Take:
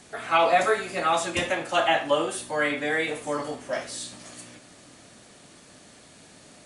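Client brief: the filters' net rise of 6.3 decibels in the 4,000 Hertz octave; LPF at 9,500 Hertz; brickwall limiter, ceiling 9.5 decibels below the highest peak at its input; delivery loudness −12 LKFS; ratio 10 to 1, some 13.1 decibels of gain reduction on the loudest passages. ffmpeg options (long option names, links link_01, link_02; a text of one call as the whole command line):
ffmpeg -i in.wav -af "lowpass=9500,equalizer=frequency=4000:width_type=o:gain=8.5,acompressor=threshold=-29dB:ratio=10,volume=25.5dB,alimiter=limit=-2dB:level=0:latency=1" out.wav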